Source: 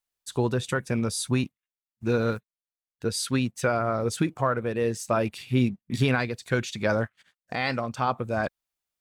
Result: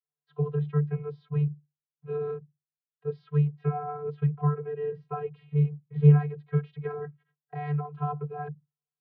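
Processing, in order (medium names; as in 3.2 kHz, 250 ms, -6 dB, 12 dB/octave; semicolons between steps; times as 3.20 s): vocoder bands 32, square 147 Hz; Gaussian low-pass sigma 3.5 samples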